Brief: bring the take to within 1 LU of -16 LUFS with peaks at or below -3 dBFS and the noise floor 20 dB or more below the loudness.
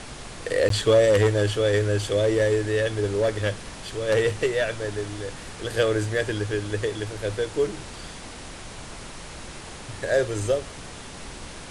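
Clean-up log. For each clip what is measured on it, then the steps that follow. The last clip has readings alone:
dropouts 1; longest dropout 13 ms; noise floor -40 dBFS; noise floor target -44 dBFS; loudness -24.0 LUFS; peak level -8.0 dBFS; loudness target -16.0 LUFS
-> interpolate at 0.69 s, 13 ms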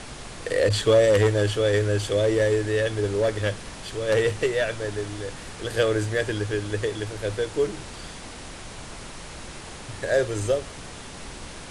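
dropouts 0; noise floor -40 dBFS; noise floor target -44 dBFS
-> noise print and reduce 6 dB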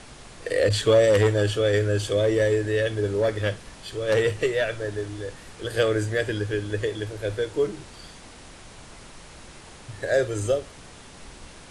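noise floor -46 dBFS; loudness -24.0 LUFS; peak level -8.0 dBFS; loudness target -16.0 LUFS
-> trim +8 dB; peak limiter -3 dBFS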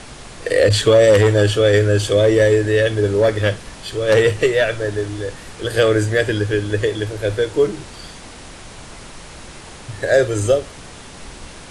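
loudness -16.5 LUFS; peak level -3.0 dBFS; noise floor -38 dBFS

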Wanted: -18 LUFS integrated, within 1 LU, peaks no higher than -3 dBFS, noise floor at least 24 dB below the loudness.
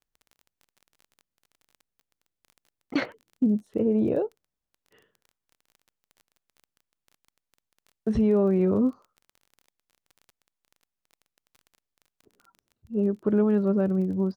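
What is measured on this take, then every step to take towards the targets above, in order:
tick rate 23 per s; loudness -25.5 LUFS; peak level -13.5 dBFS; loudness target -18.0 LUFS
-> de-click; trim +7.5 dB

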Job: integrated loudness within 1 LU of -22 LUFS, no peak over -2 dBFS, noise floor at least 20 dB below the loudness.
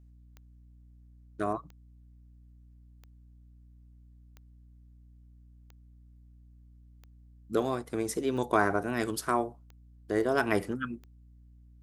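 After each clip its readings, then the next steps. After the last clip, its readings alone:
clicks found 9; hum 60 Hz; highest harmonic 300 Hz; hum level -53 dBFS; loudness -31.0 LUFS; peak level -10.0 dBFS; loudness target -22.0 LUFS
-> de-click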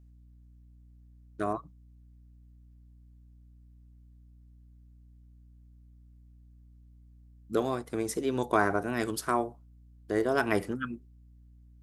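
clicks found 0; hum 60 Hz; highest harmonic 300 Hz; hum level -53 dBFS
-> de-hum 60 Hz, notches 5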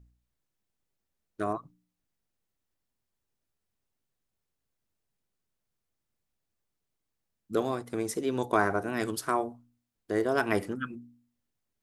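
hum not found; loudness -31.0 LUFS; peak level -10.0 dBFS; loudness target -22.0 LUFS
-> trim +9 dB; peak limiter -2 dBFS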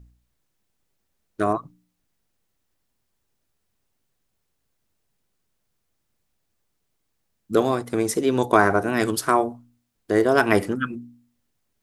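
loudness -22.0 LUFS; peak level -2.0 dBFS; noise floor -75 dBFS

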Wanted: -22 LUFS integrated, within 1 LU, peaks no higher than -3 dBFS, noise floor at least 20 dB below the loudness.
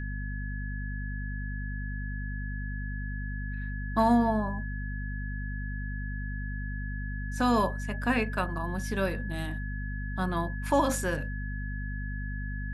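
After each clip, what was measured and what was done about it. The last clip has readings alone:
hum 50 Hz; highest harmonic 250 Hz; hum level -32 dBFS; steady tone 1.7 kHz; tone level -41 dBFS; loudness -32.0 LUFS; peak level -13.0 dBFS; loudness target -22.0 LUFS
-> de-hum 50 Hz, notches 5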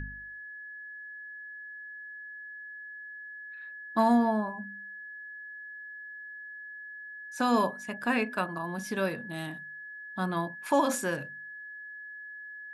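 hum not found; steady tone 1.7 kHz; tone level -41 dBFS
-> band-stop 1.7 kHz, Q 30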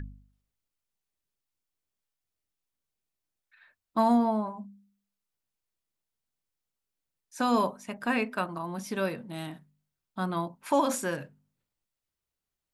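steady tone not found; loudness -29.5 LUFS; peak level -14.0 dBFS; loudness target -22.0 LUFS
-> trim +7.5 dB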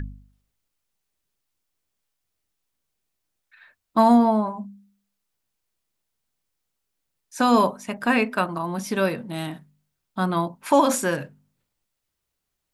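loudness -22.0 LUFS; peak level -6.5 dBFS; noise floor -80 dBFS

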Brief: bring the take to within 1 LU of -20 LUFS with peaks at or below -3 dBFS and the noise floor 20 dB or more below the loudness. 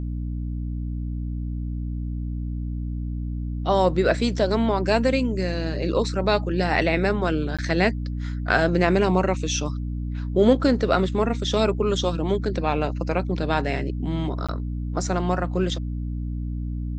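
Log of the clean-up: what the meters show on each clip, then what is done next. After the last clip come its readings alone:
dropouts 2; longest dropout 16 ms; hum 60 Hz; highest harmonic 300 Hz; hum level -26 dBFS; loudness -24.0 LUFS; peak level -4.0 dBFS; loudness target -20.0 LUFS
-> interpolate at 7.57/14.47 s, 16 ms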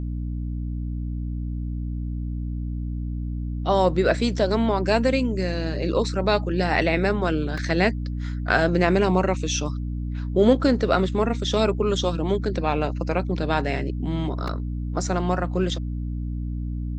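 dropouts 0; hum 60 Hz; highest harmonic 300 Hz; hum level -26 dBFS
-> de-hum 60 Hz, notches 5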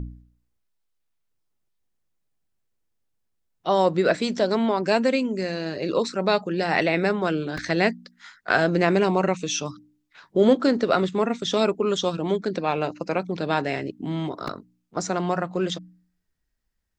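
hum not found; loudness -24.0 LUFS; peak level -4.5 dBFS; loudness target -20.0 LUFS
-> trim +4 dB; peak limiter -3 dBFS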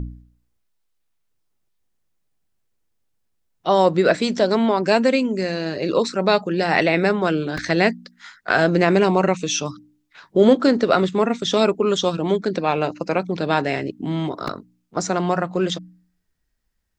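loudness -20.0 LUFS; peak level -3.0 dBFS; noise floor -71 dBFS

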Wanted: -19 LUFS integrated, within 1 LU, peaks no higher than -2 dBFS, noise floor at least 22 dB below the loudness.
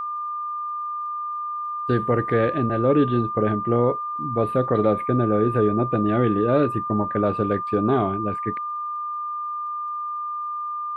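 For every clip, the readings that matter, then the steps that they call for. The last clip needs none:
tick rate 44 per s; steady tone 1.2 kHz; tone level -26 dBFS; loudness -23.0 LUFS; peak level -7.0 dBFS; loudness target -19.0 LUFS
-> de-click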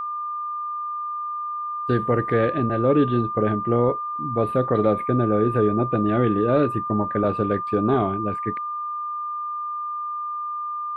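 tick rate 0.18 per s; steady tone 1.2 kHz; tone level -26 dBFS
-> band-stop 1.2 kHz, Q 30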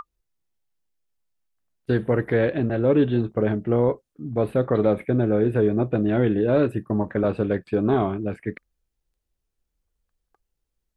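steady tone not found; loudness -22.5 LUFS; peak level -7.5 dBFS; loudness target -19.0 LUFS
-> trim +3.5 dB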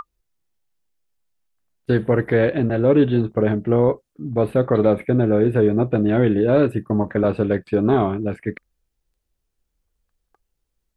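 loudness -19.0 LUFS; peak level -4.0 dBFS; noise floor -77 dBFS

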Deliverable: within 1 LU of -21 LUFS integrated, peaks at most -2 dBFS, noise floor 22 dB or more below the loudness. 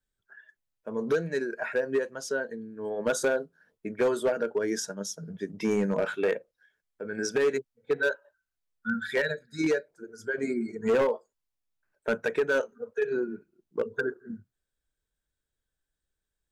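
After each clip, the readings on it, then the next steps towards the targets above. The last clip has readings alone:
clipped samples 1.2%; clipping level -19.5 dBFS; loudness -30.0 LUFS; peak level -19.5 dBFS; loudness target -21.0 LUFS
-> clip repair -19.5 dBFS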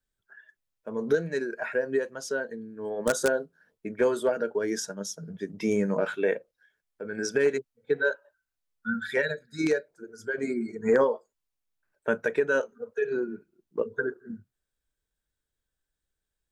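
clipped samples 0.0%; loudness -29.0 LUFS; peak level -10.5 dBFS; loudness target -21.0 LUFS
-> trim +8 dB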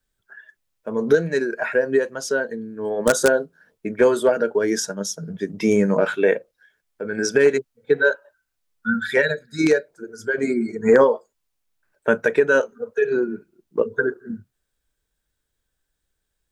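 loudness -21.0 LUFS; peak level -2.5 dBFS; noise floor -78 dBFS

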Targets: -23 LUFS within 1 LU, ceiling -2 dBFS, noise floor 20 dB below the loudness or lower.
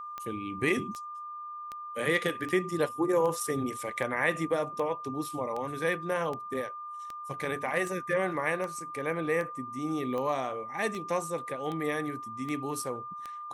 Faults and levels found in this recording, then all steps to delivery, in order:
clicks found 18; steady tone 1.2 kHz; tone level -38 dBFS; loudness -32.0 LUFS; peak level -13.5 dBFS; loudness target -23.0 LUFS
-> de-click; band-stop 1.2 kHz, Q 30; trim +9 dB

